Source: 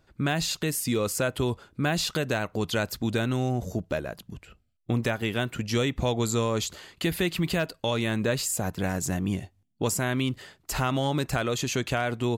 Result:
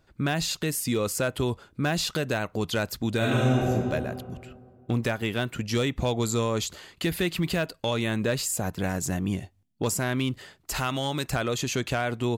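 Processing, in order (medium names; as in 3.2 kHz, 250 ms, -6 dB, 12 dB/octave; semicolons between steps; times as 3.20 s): 10.74–11.30 s: tilt shelf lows -4 dB, about 1.4 kHz; overload inside the chain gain 17.5 dB; 3.17–3.69 s: reverb throw, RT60 2.1 s, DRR -5.5 dB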